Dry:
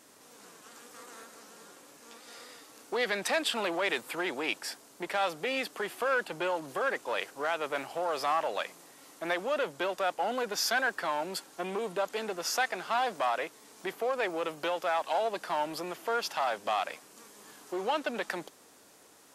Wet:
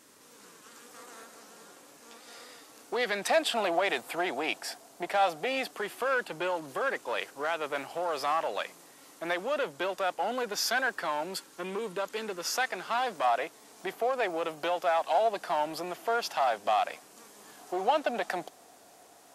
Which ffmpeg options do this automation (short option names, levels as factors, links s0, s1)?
-af "asetnsamples=n=441:p=0,asendcmd='0.88 equalizer g 2.5;3.3 equalizer g 11.5;5.71 equalizer g 0;11.36 equalizer g -9.5;12.45 equalizer g -1.5;13.24 equalizer g 6.5;17.59 equalizer g 13',equalizer=f=710:t=o:w=0.32:g=-6.5"